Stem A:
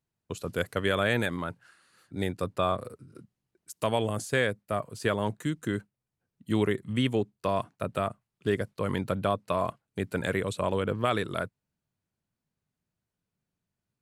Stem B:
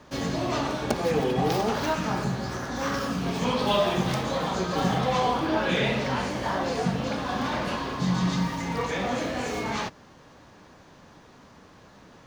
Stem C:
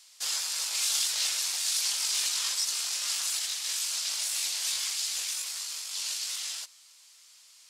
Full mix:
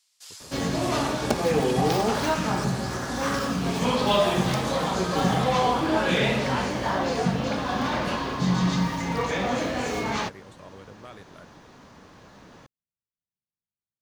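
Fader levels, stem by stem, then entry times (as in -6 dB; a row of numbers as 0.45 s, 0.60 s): -18.0 dB, +2.0 dB, -13.5 dB; 0.00 s, 0.40 s, 0.00 s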